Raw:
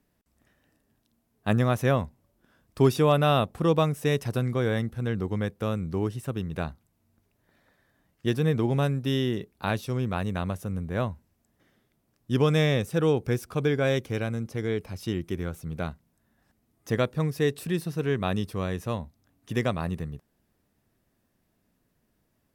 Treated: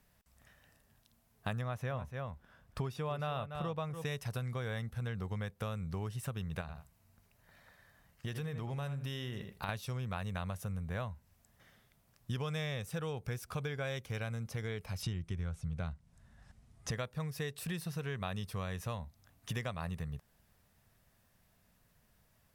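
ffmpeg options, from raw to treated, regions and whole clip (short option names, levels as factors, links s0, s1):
-filter_complex "[0:a]asettb=1/sr,asplit=3[s0][s1][s2];[s0]atrim=end=1.614[s3];[s1]atrim=start=1.61:end=4.05,asetpts=PTS-STARTPTS,afade=t=in:d=0.004:c=qsin,afade=t=out:st=2.436:d=0.004:c=qsin,highshelf=f=3700:g=-10.5,aecho=1:1:290:0.251,atrim=end_sample=107604[s4];[s2]atrim=start=4.046[s5];[s3][s4]acrossfade=d=0.004:c1=hsin:c2=qsin[s6];[s6][s5]acrossfade=d=0.004:c1=qsin:c2=hsin,asettb=1/sr,asplit=3[s7][s8][s9];[s7]atrim=end=6.614[s10];[s8]atrim=start=6.61:end=9.69,asetpts=PTS-STARTPTS,afade=t=in:d=0.004:c=qsin,afade=t=out:st=3.076:d=0.004:c=qsin,bandreject=f=3500:w=20,asplit=2[s11][s12];[s12]adelay=79,lowpass=f=3300:p=1,volume=0.266,asplit=2[s13][s14];[s14]adelay=79,lowpass=f=3300:p=1,volume=0.17[s15];[s11][s13][s15]amix=inputs=3:normalize=0,atrim=end_sample=135828,acompressor=threshold=0.0126:ratio=2:attack=3.2:release=140:knee=1:detection=peak[s16];[s9]atrim=start=9.686[s17];[s10][s16]acrossfade=d=0.004:c1=hsin:c2=qsin[s18];[s18][s17]acrossfade=d=0.004:c1=qsin:c2=hsin,asettb=1/sr,asplit=3[s19][s20][s21];[s19]atrim=end=15.024[s22];[s20]atrim=start=15.02:end=16.91,asetpts=PTS-STARTPTS,afade=t=in:d=0.004:c=qsin,afade=t=out:st=1.886:d=0.004:c=qsin,lowpass=f=9700:w=0.5412,lowpass=f=9700:w=1.3066,lowshelf=f=190:g=11[s23];[s21]atrim=start=16.906[s24];[s22][s23]acrossfade=d=0.004:c1=hsin:c2=qsin[s25];[s25][s24]acrossfade=d=0.004:c1=qsin:c2=hsin,equalizer=f=310:w=1.3:g=-14.5,acompressor=threshold=0.00891:ratio=6,volume=1.78"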